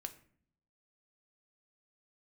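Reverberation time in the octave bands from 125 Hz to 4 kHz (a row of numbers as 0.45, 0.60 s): 0.95, 0.90, 0.60, 0.50, 0.50, 0.35 s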